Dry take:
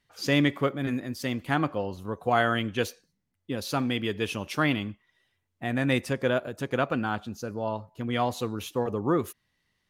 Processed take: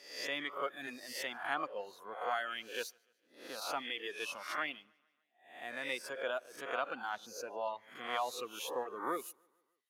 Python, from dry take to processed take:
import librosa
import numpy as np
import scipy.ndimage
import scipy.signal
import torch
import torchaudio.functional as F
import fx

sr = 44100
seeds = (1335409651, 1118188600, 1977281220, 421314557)

p1 = fx.spec_swells(x, sr, rise_s=0.66)
p2 = scipy.signal.sosfilt(scipy.signal.butter(2, 580.0, 'highpass', fs=sr, output='sos'), p1)
p3 = fx.rider(p2, sr, range_db=4, speed_s=0.5)
p4 = p3 + fx.echo_feedback(p3, sr, ms=148, feedback_pct=55, wet_db=-20.5, dry=0)
p5 = fx.dereverb_blind(p4, sr, rt60_s=1.3)
y = p5 * librosa.db_to_amplitude(-8.0)